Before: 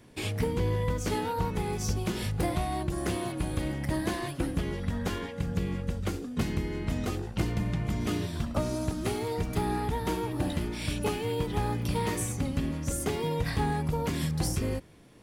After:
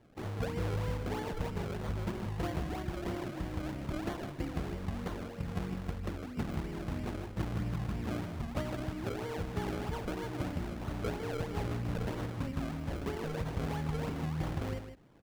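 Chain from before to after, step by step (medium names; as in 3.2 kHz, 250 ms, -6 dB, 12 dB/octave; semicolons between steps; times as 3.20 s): decimation with a swept rate 33×, swing 100% 3.1 Hz; treble shelf 4.2 kHz -9 dB; delay 155 ms -9.5 dB; trim -6.5 dB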